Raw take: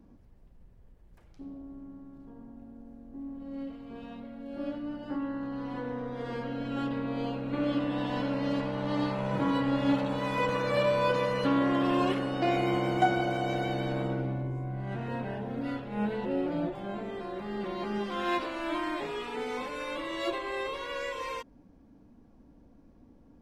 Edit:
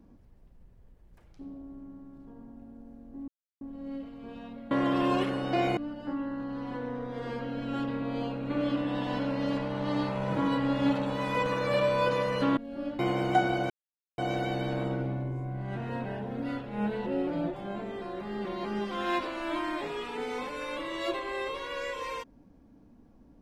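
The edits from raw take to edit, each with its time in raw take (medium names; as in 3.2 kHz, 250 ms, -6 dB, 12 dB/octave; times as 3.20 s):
3.28 s: insert silence 0.33 s
4.38–4.80 s: swap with 11.60–12.66 s
13.37 s: insert silence 0.48 s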